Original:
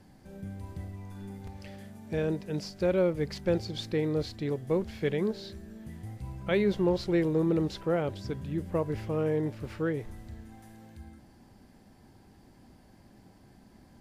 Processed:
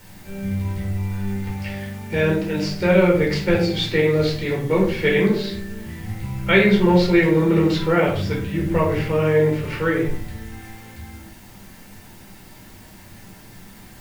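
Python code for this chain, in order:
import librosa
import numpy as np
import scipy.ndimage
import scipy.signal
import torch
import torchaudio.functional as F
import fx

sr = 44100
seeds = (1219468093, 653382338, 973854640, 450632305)

p1 = fx.peak_eq(x, sr, hz=2200.0, db=11.5, octaves=1.8)
p2 = fx.quant_dither(p1, sr, seeds[0], bits=8, dither='triangular')
p3 = p1 + (p2 * 10.0 ** (-5.0 / 20.0))
p4 = fx.room_shoebox(p3, sr, seeds[1], volume_m3=470.0, walls='furnished', distance_m=4.5)
y = p4 * 10.0 ** (-2.5 / 20.0)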